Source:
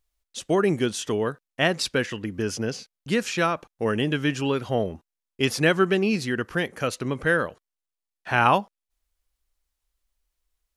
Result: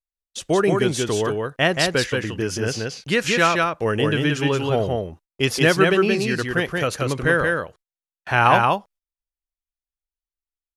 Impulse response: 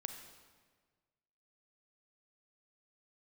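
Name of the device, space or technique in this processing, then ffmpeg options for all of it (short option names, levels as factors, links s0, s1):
low shelf boost with a cut just above: -filter_complex "[0:a]lowshelf=f=100:g=6,equalizer=f=230:t=o:w=0.64:g=-5.5,agate=range=0.0398:threshold=0.00398:ratio=16:detection=peak,asettb=1/sr,asplit=3[s0][s1][s2];[s0]atrim=end=2.634[s3];[s1]atrim=start=2.63:end=3.52,asetpts=PTS-STARTPTS,afade=t=in:d=0.004:c=qsin,afade=t=out:st=0.886:d=0.004:c=qsin,equalizer=f=2200:t=o:w=2.2:g=4.5[s4];[s2]atrim=start=3.516[s5];[s3][s4]acrossfade=d=0.004:c1=hsin:c2=qsin[s6];[s6][s5]acrossfade=d=0.004:c1=qsin:c2=hsin,aecho=1:1:177:0.708,volume=1.41"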